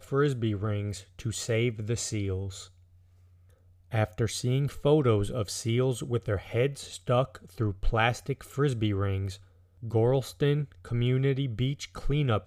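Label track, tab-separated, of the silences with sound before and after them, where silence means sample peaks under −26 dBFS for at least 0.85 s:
2.350000	3.940000	silence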